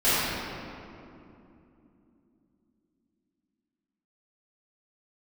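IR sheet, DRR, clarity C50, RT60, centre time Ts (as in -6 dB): -15.5 dB, -5.5 dB, 2.9 s, 177 ms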